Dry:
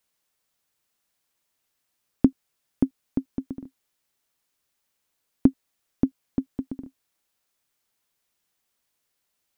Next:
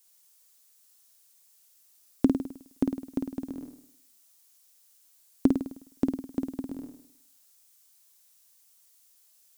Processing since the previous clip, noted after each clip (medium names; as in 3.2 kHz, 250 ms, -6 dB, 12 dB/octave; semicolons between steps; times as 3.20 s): tone controls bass -9 dB, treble +15 dB; on a send: flutter echo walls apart 8.9 m, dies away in 0.65 s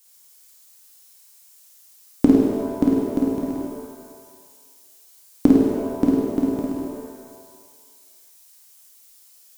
pitch-shifted reverb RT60 1.5 s, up +7 st, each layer -8 dB, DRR -1.5 dB; trim +6 dB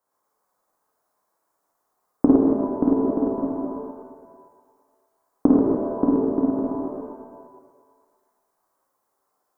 chunks repeated in reverse 115 ms, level -4 dB; FFT filter 110 Hz 0 dB, 1.1 kHz +9 dB, 2.7 kHz -23 dB; trim -6 dB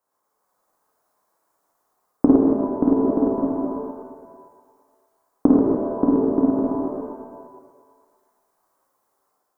level rider gain up to 3.5 dB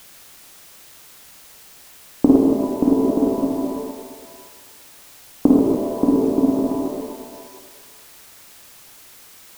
low-pass 1.1 kHz; added noise white -47 dBFS; trim +1.5 dB